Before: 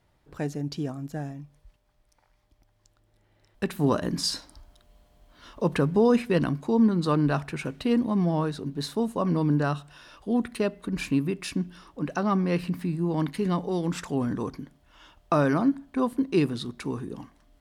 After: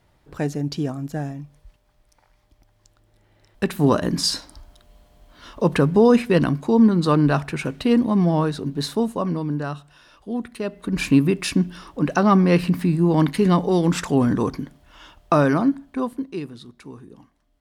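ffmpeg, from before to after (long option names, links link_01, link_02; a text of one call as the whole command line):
ffmpeg -i in.wav -af "volume=17dB,afade=type=out:start_time=8.93:duration=0.5:silence=0.398107,afade=type=in:start_time=10.62:duration=0.51:silence=0.281838,afade=type=out:start_time=14.58:duration=1.34:silence=0.446684,afade=type=out:start_time=15.92:duration=0.48:silence=0.316228" out.wav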